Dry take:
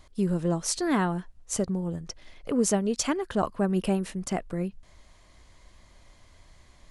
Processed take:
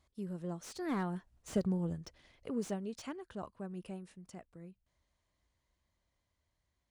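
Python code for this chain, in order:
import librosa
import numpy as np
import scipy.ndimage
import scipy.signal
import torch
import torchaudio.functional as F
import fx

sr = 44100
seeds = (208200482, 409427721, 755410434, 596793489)

y = fx.doppler_pass(x, sr, speed_mps=8, closest_m=3.2, pass_at_s=1.66)
y = scipy.signal.sosfilt(scipy.signal.butter(2, 54.0, 'highpass', fs=sr, output='sos'), y)
y = fx.low_shelf(y, sr, hz=130.0, db=4.5)
y = fx.slew_limit(y, sr, full_power_hz=46.0)
y = y * librosa.db_to_amplitude(-5.0)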